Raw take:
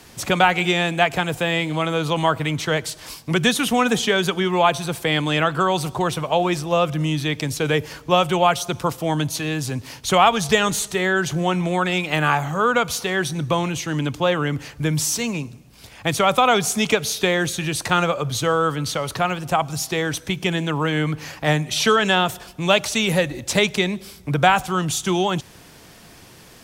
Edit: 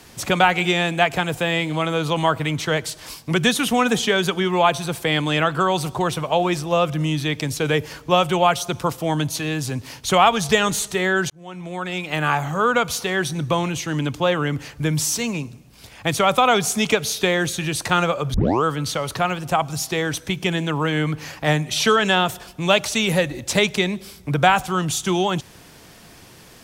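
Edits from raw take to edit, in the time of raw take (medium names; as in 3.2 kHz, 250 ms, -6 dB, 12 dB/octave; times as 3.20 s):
11.30–12.48 s: fade in
18.34 s: tape start 0.30 s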